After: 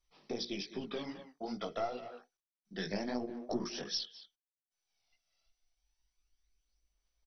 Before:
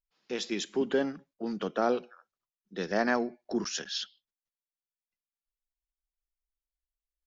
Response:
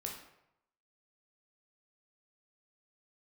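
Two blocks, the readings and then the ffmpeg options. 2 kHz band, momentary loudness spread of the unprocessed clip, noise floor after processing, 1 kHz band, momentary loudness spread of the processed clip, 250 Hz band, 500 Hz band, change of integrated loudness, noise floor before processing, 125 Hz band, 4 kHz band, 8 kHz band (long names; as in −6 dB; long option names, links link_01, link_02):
−12.0 dB, 10 LU, below −85 dBFS, −8.5 dB, 9 LU, −7.5 dB, −9.0 dB, −8.0 dB, below −85 dBFS, −3.0 dB, −3.5 dB, can't be measured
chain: -filter_complex "[0:a]bandreject=frequency=60:width_type=h:width=6,bandreject=frequency=120:width_type=h:width=6,bandreject=frequency=180:width_type=h:width=6,bandreject=frequency=240:width_type=h:width=6,bandreject=frequency=300:width_type=h:width=6,bandreject=frequency=360:width_type=h:width=6,bandreject=frequency=420:width_type=h:width=6,bandreject=frequency=480:width_type=h:width=6,aphaser=in_gain=1:out_gain=1:delay=1.5:decay=0.7:speed=0.28:type=sinusoidal,aeval=exprs='0.299*(cos(1*acos(clip(val(0)/0.299,-1,1)))-cos(1*PI/2))+0.0237*(cos(4*acos(clip(val(0)/0.299,-1,1)))-cos(4*PI/2))':channel_layout=same,equalizer=frequency=1500:width=5.8:gain=-11,asplit=2[link_01][link_02];[link_02]adelay=200,highpass=300,lowpass=3400,asoftclip=type=hard:threshold=-20dB,volume=-17dB[link_03];[link_01][link_03]amix=inputs=2:normalize=0,acompressor=mode=upward:threshold=-44dB:ratio=2.5,highshelf=frequency=6300:gain=11.5,agate=range=-33dB:threshold=-49dB:ratio=3:detection=peak,acompressor=threshold=-34dB:ratio=4,flanger=delay=16:depth=4.9:speed=2.5,volume=1.5dB" -ar 24000 -c:a mp2 -b:a 32k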